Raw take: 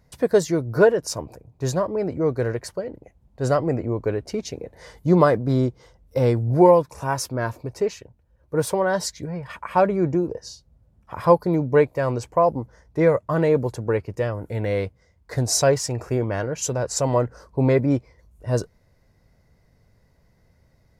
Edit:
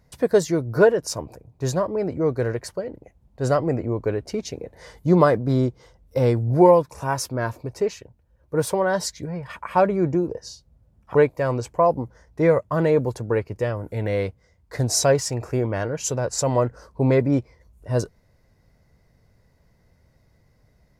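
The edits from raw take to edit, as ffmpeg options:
-filter_complex "[0:a]asplit=2[s0][s1];[s0]atrim=end=11.152[s2];[s1]atrim=start=11.728[s3];[s2][s3]acrossfade=d=0.004:c1=hsin:c2=hsin"

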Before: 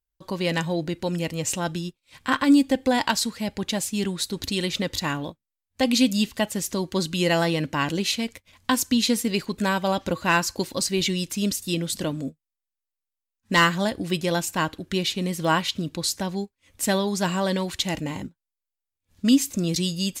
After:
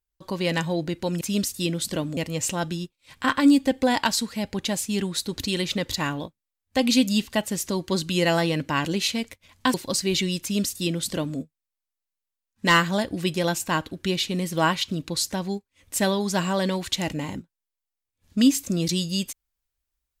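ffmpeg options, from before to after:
-filter_complex "[0:a]asplit=4[s0][s1][s2][s3];[s0]atrim=end=1.212[s4];[s1]atrim=start=11.288:end=12.252[s5];[s2]atrim=start=1.208:end=8.782[s6];[s3]atrim=start=10.608[s7];[s4][s5]acrossfade=d=0.004:c1=hsin:c2=hsin[s8];[s8][s6]acrossfade=d=0.004:c1=hsin:c2=hsin[s9];[s9][s7]acrossfade=d=0.004:c1=hsin:c2=hsin"

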